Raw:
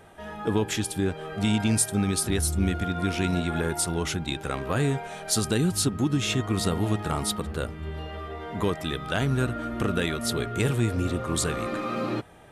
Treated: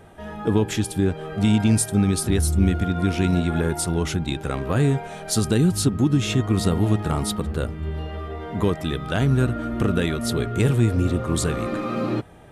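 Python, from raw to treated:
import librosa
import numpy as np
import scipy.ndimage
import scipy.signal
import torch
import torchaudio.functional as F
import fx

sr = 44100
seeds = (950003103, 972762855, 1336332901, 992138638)

y = fx.low_shelf(x, sr, hz=480.0, db=7.0)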